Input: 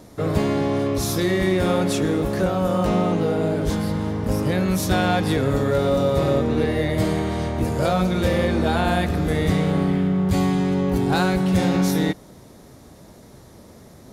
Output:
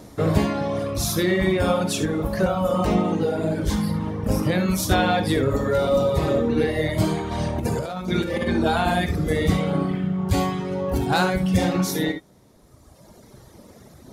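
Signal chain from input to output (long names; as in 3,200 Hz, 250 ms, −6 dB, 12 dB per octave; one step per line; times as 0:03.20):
reverb reduction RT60 2 s
0:07.31–0:08.53: compressor whose output falls as the input rises −26 dBFS, ratio −0.5
reverb whose tail is shaped and stops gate 90 ms rising, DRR 8.5 dB
level +2 dB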